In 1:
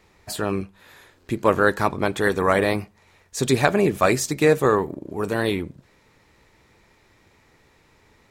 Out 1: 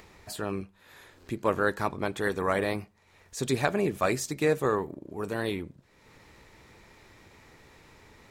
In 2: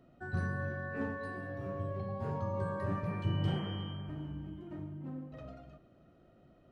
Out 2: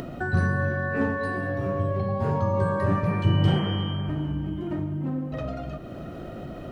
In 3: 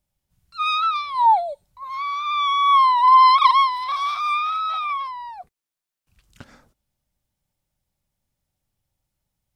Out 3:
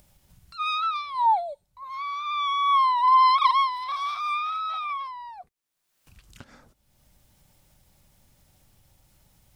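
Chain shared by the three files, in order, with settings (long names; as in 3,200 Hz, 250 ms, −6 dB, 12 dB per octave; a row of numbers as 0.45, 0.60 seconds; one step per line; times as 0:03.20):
upward compression, threshold −35 dBFS
normalise the peak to −9 dBFS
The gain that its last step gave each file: −8.0, +11.5, −5.5 decibels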